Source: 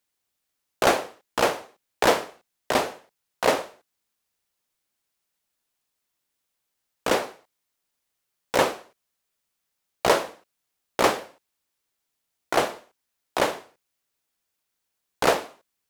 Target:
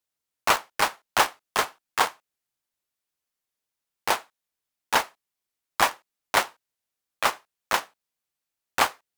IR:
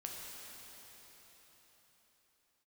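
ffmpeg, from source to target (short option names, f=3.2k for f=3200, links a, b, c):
-filter_complex "[0:a]asetrate=76440,aresample=44100,asplit=2[a][b];[b]acrusher=bits=3:mix=0:aa=0.000001,volume=-5.5dB[c];[a][c]amix=inputs=2:normalize=0,volume=-4dB"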